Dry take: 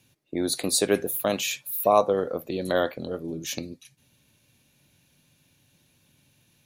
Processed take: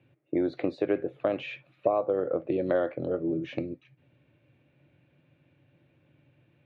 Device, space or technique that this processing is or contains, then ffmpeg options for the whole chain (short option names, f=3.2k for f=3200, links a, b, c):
bass amplifier: -af "acompressor=threshold=-26dB:ratio=4,highpass=82,equalizer=f=130:t=q:w=4:g=5,equalizer=f=210:t=q:w=4:g=-8,equalizer=f=320:t=q:w=4:g=7,equalizer=f=560:t=q:w=4:g=5,equalizer=f=980:t=q:w=4:g=-5,equalizer=f=1.7k:t=q:w=4:g=-3,lowpass=f=2.3k:w=0.5412,lowpass=f=2.3k:w=1.3066,volume=1dB"